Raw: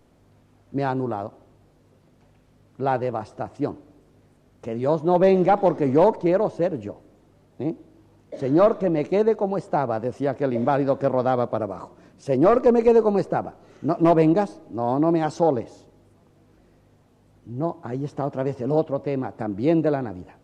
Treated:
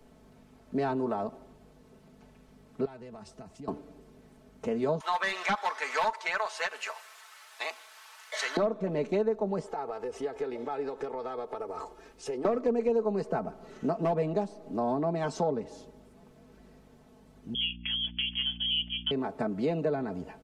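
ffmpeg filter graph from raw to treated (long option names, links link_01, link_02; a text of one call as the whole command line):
ffmpeg -i in.wav -filter_complex "[0:a]asettb=1/sr,asplit=3[link_01][link_02][link_03];[link_01]atrim=end=2.854[link_04];[link_02]atrim=start=2.85:end=3.68,asetpts=PTS-STARTPTS,afade=type=in:duration=0.004:curve=qsin,afade=type=out:start_time=0.826:duration=0.004:curve=qsin,equalizer=frequency=700:width=0.31:gain=-12.5,acompressor=threshold=-41dB:ratio=5:attack=3.2:release=140:knee=1:detection=peak[link_05];[link_03]atrim=start=3.676[link_06];[link_04][link_05]acrossfade=duration=0.004:curve1=hsin:curve2=qsin[link_07];[link_07][link_06]acrossfade=duration=0.004:curve1=qsin:curve2=hsin,asettb=1/sr,asplit=3[link_08][link_09][link_10];[link_08]atrim=end=5.004[link_11];[link_09]atrim=start=5:end=8.57,asetpts=PTS-STARTPTS,afade=type=in:duration=0.004:curve=qsin,afade=type=out:start_time=3.566:duration=0.004:curve=qsin,highpass=frequency=1200:width=0.5412,highpass=frequency=1200:width=1.3066,aeval=exprs='0.422*sin(PI/2*5.01*val(0)/0.422)':channel_layout=same[link_12];[link_10]atrim=start=8.566[link_13];[link_11][link_12]acrossfade=duration=0.004:curve1=hsin:curve2=qsin[link_14];[link_14][link_13]acrossfade=duration=0.004:curve1=qsin:curve2=hsin,asettb=1/sr,asplit=3[link_15][link_16][link_17];[link_15]atrim=end=9.664[link_18];[link_16]atrim=start=9.66:end=12.45,asetpts=PTS-STARTPTS,afade=type=in:duration=0.004:curve=qsin,afade=type=out:start_time=2.786:duration=0.004:curve=qsin,equalizer=frequency=150:width=0.73:gain=-11.5,acompressor=threshold=-35dB:ratio=4:attack=3.2:release=140:knee=1:detection=peak,aecho=1:1:2.4:0.6,atrim=end_sample=123039[link_19];[link_17]atrim=start=12.446[link_20];[link_18][link_19]acrossfade=duration=0.004:curve1=hsin:curve2=qsin[link_21];[link_21][link_20]acrossfade=duration=0.004:curve1=qsin:curve2=hsin,asettb=1/sr,asplit=3[link_22][link_23][link_24];[link_22]atrim=end=17.544[link_25];[link_23]atrim=start=17.54:end=19.11,asetpts=PTS-STARTPTS,afade=type=in:duration=0.004:curve=qsin,afade=type=out:start_time=1.566:duration=0.004:curve=qsin,agate=range=-15dB:threshold=-38dB:ratio=16:release=100:detection=peak,lowpass=frequency=3000:width_type=q:width=0.5098,lowpass=frequency=3000:width_type=q:width=0.6013,lowpass=frequency=3000:width_type=q:width=0.9,lowpass=frequency=3000:width_type=q:width=2.563,afreqshift=-3500,aeval=exprs='val(0)+0.00891*(sin(2*PI*60*n/s)+sin(2*PI*2*60*n/s)/2+sin(2*PI*3*60*n/s)/3+sin(2*PI*4*60*n/s)/4+sin(2*PI*5*60*n/s)/5)':channel_layout=same[link_26];[link_24]atrim=start=19.106[link_27];[link_25][link_26]acrossfade=duration=0.004:curve1=hsin:curve2=qsin[link_28];[link_28][link_27]acrossfade=duration=0.004:curve1=qsin:curve2=hsin,aecho=1:1:4.6:0.71,acrossover=split=82|350[link_29][link_30][link_31];[link_29]acompressor=threshold=-55dB:ratio=4[link_32];[link_30]acompressor=threshold=-35dB:ratio=4[link_33];[link_31]acompressor=threshold=-30dB:ratio=4[link_34];[link_32][link_33][link_34]amix=inputs=3:normalize=0" out.wav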